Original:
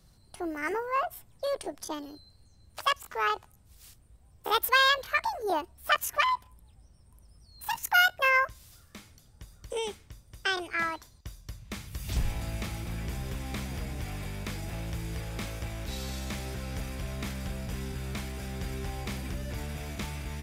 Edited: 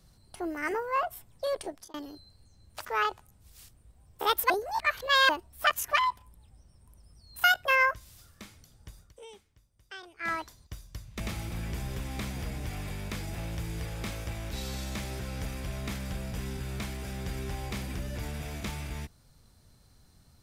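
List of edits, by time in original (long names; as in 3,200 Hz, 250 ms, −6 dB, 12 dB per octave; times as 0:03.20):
0:01.55–0:01.94: fade out equal-power
0:02.85–0:03.10: remove
0:04.75–0:05.54: reverse
0:07.69–0:07.98: remove
0:09.53–0:10.86: duck −15.5 dB, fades 0.14 s
0:11.74–0:12.55: remove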